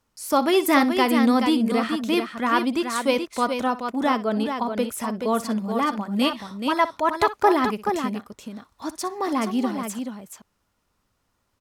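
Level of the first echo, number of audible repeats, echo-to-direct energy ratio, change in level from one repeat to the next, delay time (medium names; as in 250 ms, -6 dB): -16.0 dB, 2, -6.0 dB, no regular repeats, 61 ms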